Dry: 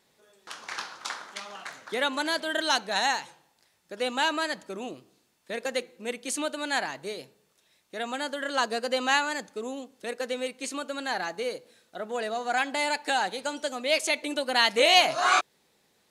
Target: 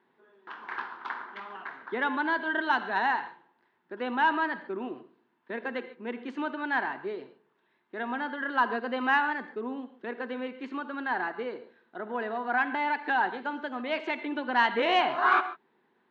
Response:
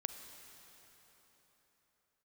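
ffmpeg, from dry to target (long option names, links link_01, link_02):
-filter_complex "[0:a]highpass=160,equalizer=frequency=240:width_type=q:width=4:gain=7,equalizer=frequency=370:width_type=q:width=4:gain=9,equalizer=frequency=560:width_type=q:width=4:gain=-7,equalizer=frequency=970:width_type=q:width=4:gain=9,equalizer=frequency=1600:width_type=q:width=4:gain=6,equalizer=frequency=2400:width_type=q:width=4:gain=-5,lowpass=frequency=2700:width=0.5412,lowpass=frequency=2700:width=1.3066[link_01];[1:a]atrim=start_sample=2205,afade=type=out:start_time=0.18:duration=0.01,atrim=end_sample=8379,asetrate=37926,aresample=44100[link_02];[link_01][link_02]afir=irnorm=-1:irlink=0,acontrast=43,volume=-8dB"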